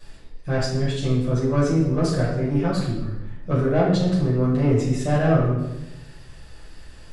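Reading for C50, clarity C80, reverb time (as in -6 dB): 2.0 dB, 5.0 dB, 0.95 s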